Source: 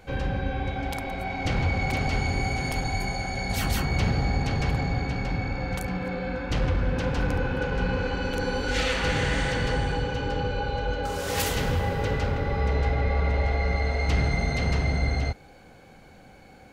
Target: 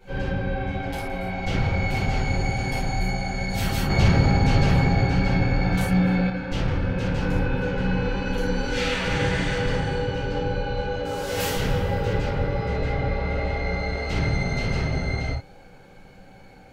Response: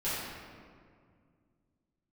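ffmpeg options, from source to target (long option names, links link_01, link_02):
-filter_complex "[1:a]atrim=start_sample=2205,atrim=end_sample=3969[link_01];[0:a][link_01]afir=irnorm=-1:irlink=0,asettb=1/sr,asplit=3[link_02][link_03][link_04];[link_02]atrim=end=3.904[link_05];[link_03]atrim=start=3.9:end=6.3,asetpts=PTS-STARTPTS,afade=type=in:duration=0.004:curve=qsin,afade=type=out:start_time=2.396:duration=0.004:curve=qsin,acontrast=39[link_06];[link_04]atrim=start=6.296[link_07];[link_05][link_06]acrossfade=duration=0.004:curve1=hsin:curve2=qsin[link_08];[link_08][link_07]acrossfade=duration=0.004:curve1=qsin:curve2=hsin,volume=-4dB"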